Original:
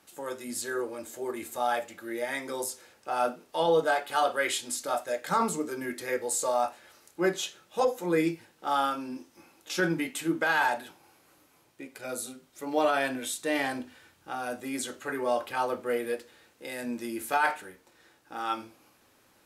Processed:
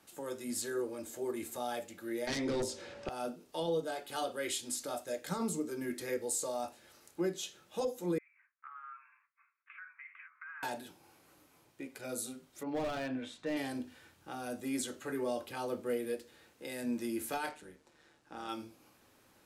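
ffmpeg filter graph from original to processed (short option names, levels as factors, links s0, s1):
-filter_complex "[0:a]asettb=1/sr,asplit=3[s0][s1][s2];[s0]atrim=end=2.274[s3];[s1]atrim=start=2.27:end=3.09,asetpts=PTS-STARTPTS,afade=t=in:d=0.004:c=qsin,afade=t=out:st=0.816:d=0.004:c=qsin,lowpass=4000,aeval=exprs='val(0)+0.00112*sin(2*PI*570*n/s)':c=same,aeval=exprs='0.1*sin(PI/2*3.16*val(0)/0.1)':c=same[s4];[s2]atrim=start=3.086[s5];[s3][s4]acrossfade=d=0.004:c1=hsin:c2=qsin[s6];[s6][s5]acrossfade=d=0.004:c1=qsin:c2=hsin,asettb=1/sr,asplit=3[s7][s8][s9];[s7]atrim=end=8.184[s10];[s8]atrim=start=8.18:end=10.63,asetpts=PTS-STARTPTS,afade=t=in:d=0.004:c=qsin,afade=t=out:st=2.446:d=0.004:c=qsin,agate=range=0.0224:threshold=0.00282:ratio=3:release=100:detection=peak,acompressor=threshold=0.0224:ratio=12:attack=3.2:release=140:knee=1:detection=peak,asuperpass=centerf=1600:order=12:qfactor=1.2[s11];[s9]atrim=start=10.626[s12];[s10][s11]acrossfade=d=0.004:c1=hsin:c2=qsin[s13];[s13][s12]acrossfade=d=0.004:c1=qsin:c2=hsin,asettb=1/sr,asplit=3[s14][s15][s16];[s14]atrim=end=12.634[s17];[s15]atrim=start=12.63:end=13.57,asetpts=PTS-STARTPTS,afade=t=in:d=0.004:c=qsin,afade=t=out:st=0.936:d=0.004:c=qsin,lowpass=2600,equalizer=f=360:t=o:w=0.43:g=-6,asoftclip=type=hard:threshold=0.0596[s18];[s16]atrim=start=13.566[s19];[s17][s18]acrossfade=d=0.004:c1=hsin:c2=qsin[s20];[s20][s19]acrossfade=d=0.004:c1=qsin:c2=hsin,asettb=1/sr,asplit=3[s21][s22][s23];[s21]atrim=end=17.494[s24];[s22]atrim=start=17.49:end=18.49,asetpts=PTS-STARTPTS,afade=t=in:d=0.004:c=qsin,afade=t=out:st=0.996:d=0.004:c=qsin,lowpass=9200,tremolo=f=150:d=0.519[s25];[s23]atrim=start=18.486[s26];[s24][s25]acrossfade=d=0.004:c1=hsin:c2=qsin[s27];[s27][s26]acrossfade=d=0.004:c1=qsin:c2=hsin,lowshelf=f=370:g=3.5,acrossover=split=500|3000[s28][s29][s30];[s29]acompressor=threshold=0.00398:ratio=2[s31];[s28][s31][s30]amix=inputs=3:normalize=0,alimiter=limit=0.0794:level=0:latency=1:release=412,volume=0.708"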